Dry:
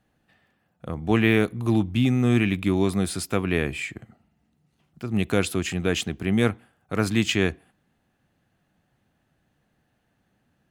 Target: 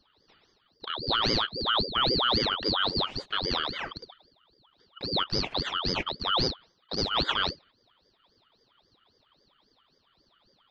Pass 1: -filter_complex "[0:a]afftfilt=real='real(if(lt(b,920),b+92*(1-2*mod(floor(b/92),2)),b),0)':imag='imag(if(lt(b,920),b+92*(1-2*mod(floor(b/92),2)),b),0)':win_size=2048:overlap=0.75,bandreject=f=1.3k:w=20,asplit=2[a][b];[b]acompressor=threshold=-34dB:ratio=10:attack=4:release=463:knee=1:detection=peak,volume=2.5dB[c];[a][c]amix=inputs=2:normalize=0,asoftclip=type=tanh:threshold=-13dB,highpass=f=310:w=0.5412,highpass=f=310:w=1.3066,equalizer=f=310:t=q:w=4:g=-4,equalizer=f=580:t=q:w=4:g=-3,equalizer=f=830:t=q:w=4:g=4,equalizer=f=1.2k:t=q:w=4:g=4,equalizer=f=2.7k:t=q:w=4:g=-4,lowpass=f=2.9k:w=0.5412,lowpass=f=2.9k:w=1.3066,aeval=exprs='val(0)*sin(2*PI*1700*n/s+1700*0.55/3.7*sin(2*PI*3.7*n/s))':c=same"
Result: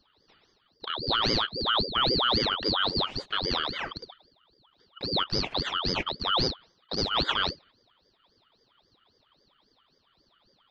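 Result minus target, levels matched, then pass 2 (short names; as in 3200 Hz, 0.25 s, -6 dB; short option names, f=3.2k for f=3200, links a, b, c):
compressor: peak gain reduction -5.5 dB
-filter_complex "[0:a]afftfilt=real='real(if(lt(b,920),b+92*(1-2*mod(floor(b/92),2)),b),0)':imag='imag(if(lt(b,920),b+92*(1-2*mod(floor(b/92),2)),b),0)':win_size=2048:overlap=0.75,bandreject=f=1.3k:w=20,asplit=2[a][b];[b]acompressor=threshold=-40dB:ratio=10:attack=4:release=463:knee=1:detection=peak,volume=2.5dB[c];[a][c]amix=inputs=2:normalize=0,asoftclip=type=tanh:threshold=-13dB,highpass=f=310:w=0.5412,highpass=f=310:w=1.3066,equalizer=f=310:t=q:w=4:g=-4,equalizer=f=580:t=q:w=4:g=-3,equalizer=f=830:t=q:w=4:g=4,equalizer=f=1.2k:t=q:w=4:g=4,equalizer=f=2.7k:t=q:w=4:g=-4,lowpass=f=2.9k:w=0.5412,lowpass=f=2.9k:w=1.3066,aeval=exprs='val(0)*sin(2*PI*1700*n/s+1700*0.55/3.7*sin(2*PI*3.7*n/s))':c=same"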